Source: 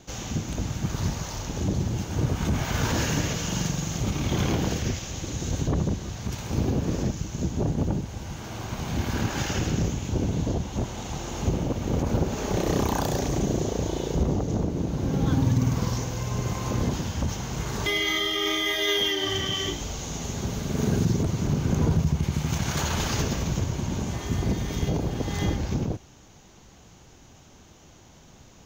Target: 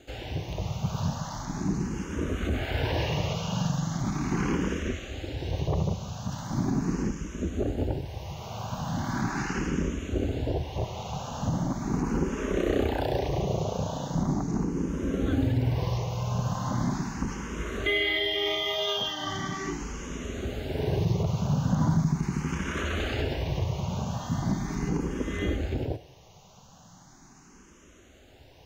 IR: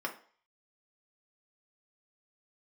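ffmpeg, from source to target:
-filter_complex "[0:a]acrossover=split=4400[a][b];[b]acompressor=threshold=-48dB:ratio=4:attack=1:release=60[c];[a][c]amix=inputs=2:normalize=0,asplit=2[d][e];[e]equalizer=f=1.9k:t=o:w=2.8:g=7[f];[1:a]atrim=start_sample=2205,asetrate=24255,aresample=44100[g];[f][g]afir=irnorm=-1:irlink=0,volume=-20.5dB[h];[d][h]amix=inputs=2:normalize=0,asplit=2[i][j];[j]afreqshift=0.39[k];[i][k]amix=inputs=2:normalize=1"

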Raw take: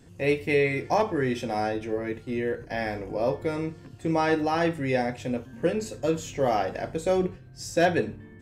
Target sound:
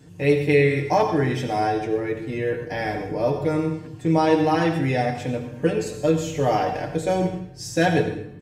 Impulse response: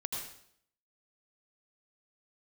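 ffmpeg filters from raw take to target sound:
-filter_complex "[0:a]highpass=62,lowshelf=f=140:g=6,aecho=1:1:6.6:0.65,asplit=2[a][b];[1:a]atrim=start_sample=2205[c];[b][c]afir=irnorm=-1:irlink=0,volume=-3dB[d];[a][d]amix=inputs=2:normalize=0,volume=-2.5dB"

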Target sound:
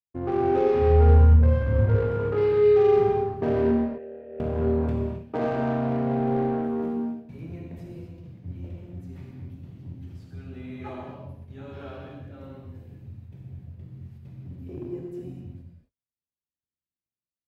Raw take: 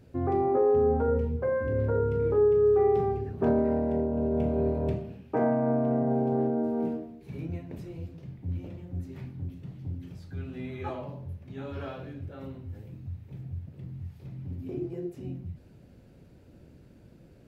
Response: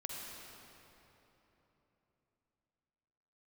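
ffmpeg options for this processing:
-filter_complex "[0:a]agate=range=-51dB:threshold=-45dB:ratio=16:detection=peak,asplit=2[a][b];[b]acrusher=bits=3:mix=0:aa=0.5,volume=-9dB[c];[a][c]amix=inputs=2:normalize=0,asplit=3[d][e][f];[d]afade=t=out:st=0.79:d=0.02[g];[e]asubboost=boost=11:cutoff=150,afade=t=in:st=0.79:d=0.02,afade=t=out:st=1.85:d=0.02[h];[f]afade=t=in:st=1.85:d=0.02[i];[g][h][i]amix=inputs=3:normalize=0,asettb=1/sr,asplit=3[j][k][l];[j]atrim=end=3.714[m];[k]atrim=start=3.71:end=4.4,asetpts=PTS-STARTPTS,afade=t=in:d=0.004:c=qsin,afade=t=out:st=0.686:d=0.004:c=qsin,asplit=3[n][o][p];[n]bandpass=f=530:t=q:w=8,volume=0dB[q];[o]bandpass=f=1.84k:t=q:w=8,volume=-6dB[r];[p]bandpass=f=2.48k:t=q:w=8,volume=-9dB[s];[q][r][s]amix=inputs=3:normalize=0[t];[l]atrim=start=4.396[u];[m][t]acrossfade=d=0.004:c1=hsin:c2=qsin[v];[v][u]acrossfade=d=0.004:c1=qsin:c2=hsin[w];[1:a]atrim=start_sample=2205,afade=t=out:st=0.32:d=0.01,atrim=end_sample=14553[x];[w][x]afir=irnorm=-1:irlink=0"

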